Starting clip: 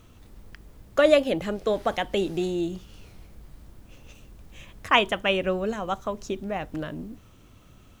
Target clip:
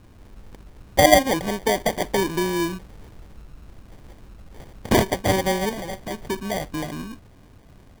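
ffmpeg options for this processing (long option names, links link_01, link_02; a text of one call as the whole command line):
ffmpeg -i in.wav -filter_complex "[0:a]acrusher=samples=33:mix=1:aa=0.000001,asettb=1/sr,asplit=3[link_01][link_02][link_03];[link_01]atrim=end=5.694[link_04];[link_02]atrim=start=5.69:end=6.11,asetpts=PTS-STARTPTS,afade=type=in:duration=0.004:curve=qsin,afade=type=out:start_time=0.416:duration=0.004:curve=qsin,asoftclip=type=hard:threshold=-31.5dB[link_05];[link_03]atrim=start=6.106[link_06];[link_04][link_05]acrossfade=duration=0.004:curve1=hsin:curve2=qsin[link_07];[link_07][link_06]acrossfade=duration=0.004:curve1=qsin:curve2=hsin,volume=3.5dB" out.wav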